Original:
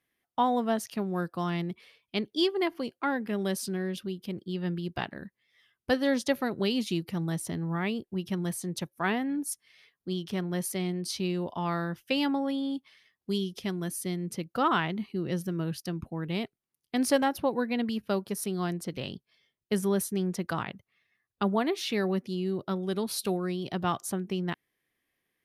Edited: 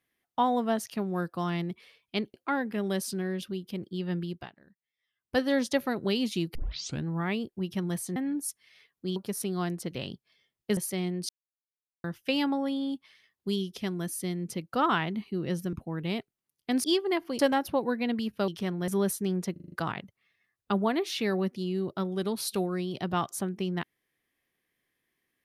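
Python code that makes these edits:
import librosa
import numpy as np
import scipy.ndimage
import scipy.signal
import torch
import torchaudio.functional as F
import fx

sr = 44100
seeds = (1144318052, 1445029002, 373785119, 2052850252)

y = fx.edit(x, sr, fx.move(start_s=2.34, length_s=0.55, to_s=17.09),
    fx.fade_down_up(start_s=4.81, length_s=1.13, db=-18.0, fade_s=0.24),
    fx.tape_start(start_s=7.1, length_s=0.5),
    fx.cut(start_s=8.71, length_s=0.48),
    fx.swap(start_s=10.19, length_s=0.4, other_s=18.18, other_length_s=1.61),
    fx.silence(start_s=11.11, length_s=0.75),
    fx.cut(start_s=15.55, length_s=0.43),
    fx.stutter(start_s=20.43, slice_s=0.04, count=6), tone=tone)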